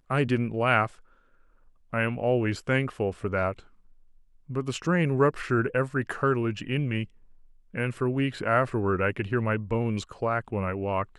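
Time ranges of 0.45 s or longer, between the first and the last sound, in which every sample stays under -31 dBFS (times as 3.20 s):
0.87–1.93 s
3.52–4.50 s
7.04–7.75 s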